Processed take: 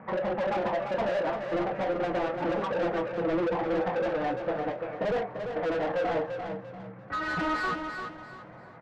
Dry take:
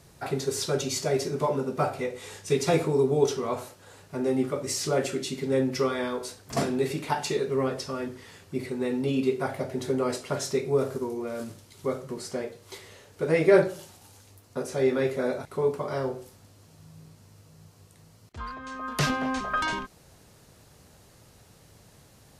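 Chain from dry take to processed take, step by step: gliding tape speed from 138% -> 116%; steep low-pass 2.1 kHz 36 dB/octave; low-pass that closes with the level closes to 1.1 kHz, closed at -24.5 dBFS; harmonic-percussive split percussive -14 dB; tempo 2×; overdrive pedal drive 35 dB, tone 1.6 kHz, clips at -9.5 dBFS; saturation -15 dBFS, distortion -21 dB; delay 292 ms -22 dB; flange 0.25 Hz, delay 5.3 ms, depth 1.8 ms, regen -69%; feedback delay 343 ms, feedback 31%, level -7 dB; trim -5 dB

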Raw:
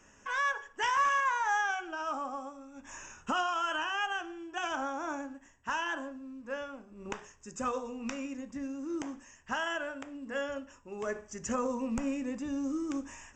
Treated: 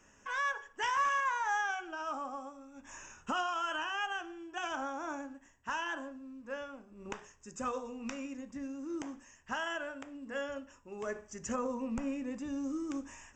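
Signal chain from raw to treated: 11.56–12.31 s: treble shelf 5.8 kHz -8 dB; trim -3 dB

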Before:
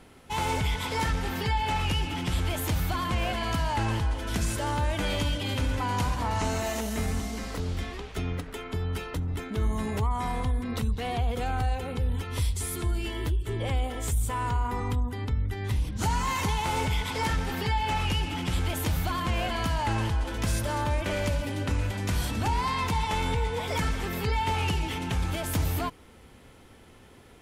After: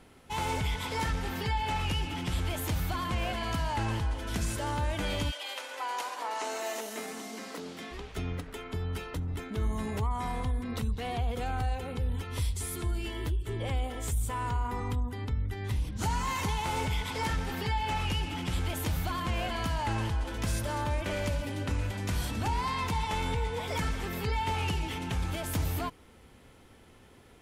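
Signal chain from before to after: 5.30–7.90 s: high-pass 640 Hz -> 180 Hz 24 dB/octave; trim -3.5 dB

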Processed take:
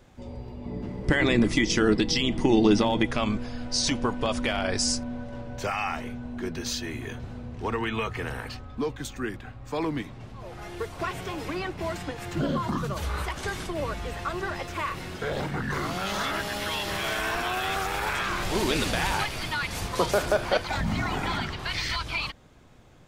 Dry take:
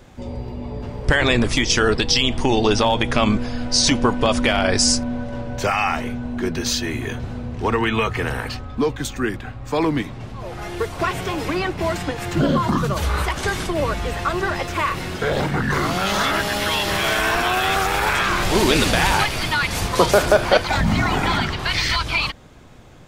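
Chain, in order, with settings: 0.66–3.06 s: small resonant body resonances 200/310/2000 Hz, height 13 dB, ringing for 55 ms; trim -9 dB

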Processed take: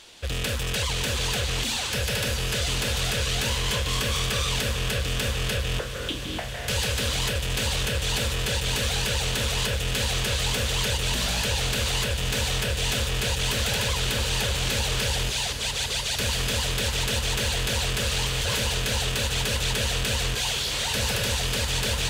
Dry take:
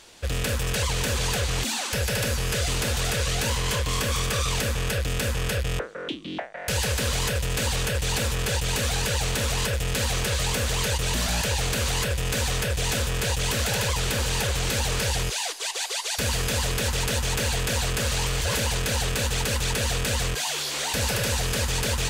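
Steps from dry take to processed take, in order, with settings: peaking EQ 3.3 kHz +6 dB 0.97 oct; in parallel at -7.5 dB: saturation -25.5 dBFS, distortion -12 dB; on the sum: echo that smears into a reverb 912 ms, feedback 73%, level -11.5 dB; trim -4.5 dB

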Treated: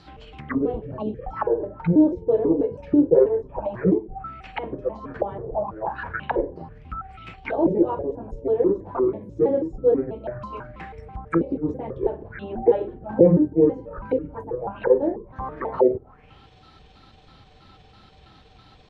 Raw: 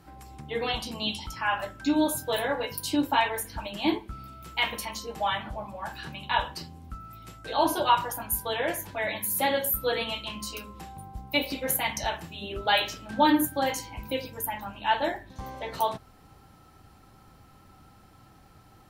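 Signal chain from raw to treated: pitch shift switched off and on -9.5 st, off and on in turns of 163 ms; touch-sensitive low-pass 420–4600 Hz down, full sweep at -29.5 dBFS; trim +3.5 dB

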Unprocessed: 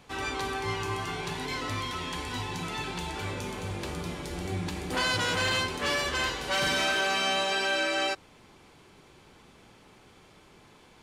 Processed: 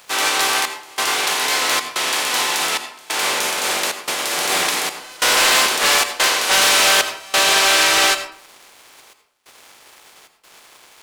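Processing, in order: spectral contrast reduction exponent 0.47; high-pass 510 Hz 12 dB/octave; waveshaping leveller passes 2; trance gate "xxxx..xxxxx.x" 92 bpm -24 dB; reverberation RT60 0.55 s, pre-delay 76 ms, DRR 9.5 dB; loudspeaker Doppler distortion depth 0.21 ms; trim +8.5 dB

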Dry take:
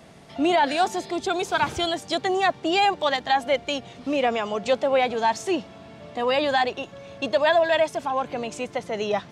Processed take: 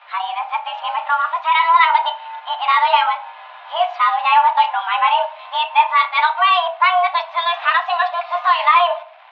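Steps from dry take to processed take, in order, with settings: reverse the whole clip; in parallel at -2 dB: compression, threshold -35 dBFS, peak gain reduction 18 dB; on the sum: crossover distortion -46.5 dBFS; level rider gain up to 4 dB; on a send at -3.5 dB: reverberation RT60 0.40 s, pre-delay 3 ms; on the sum: mistuned SSB +340 Hz 380–3200 Hz; trim +1.5 dB

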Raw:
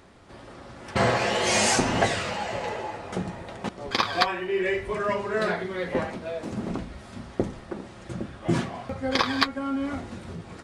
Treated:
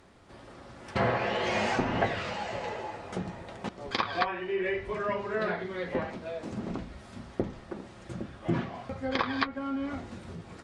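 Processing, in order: low-pass that closes with the level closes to 2.6 kHz, closed at -20 dBFS; trim -4.5 dB

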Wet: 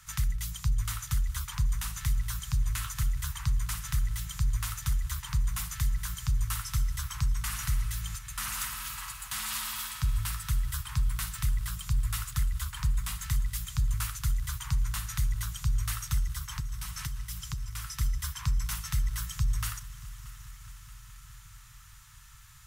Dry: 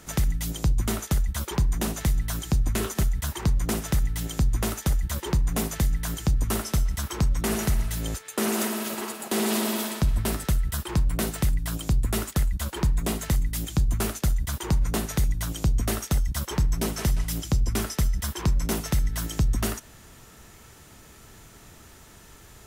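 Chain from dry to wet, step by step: Chebyshev band-stop 130–1100 Hz, order 3; 16.27–18.01 s: compression, threshold -29 dBFS, peak gain reduction 10 dB; multi-head delay 210 ms, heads all three, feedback 72%, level -23 dB; trim -4 dB

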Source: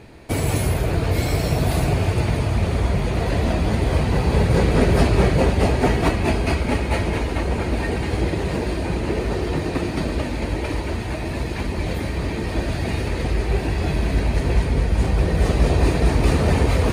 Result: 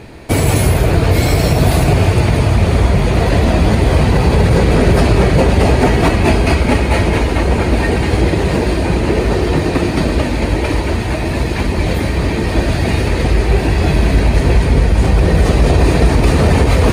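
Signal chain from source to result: loudness maximiser +10 dB; trim -1 dB

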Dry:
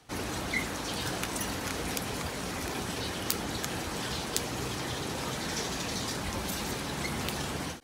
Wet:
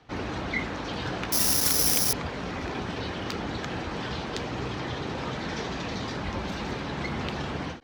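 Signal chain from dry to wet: distance through air 200 m; 1.32–2.13 s: careless resampling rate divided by 8×, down none, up zero stuff; trim +3.5 dB

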